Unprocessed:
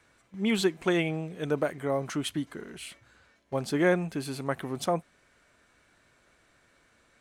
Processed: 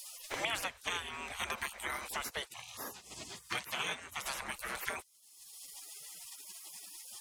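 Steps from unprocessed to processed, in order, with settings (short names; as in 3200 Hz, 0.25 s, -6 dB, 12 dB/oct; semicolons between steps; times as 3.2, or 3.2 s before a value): 2.48–4.26 weighting filter A; spectral gate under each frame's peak -25 dB weak; three-band squash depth 100%; gain +10 dB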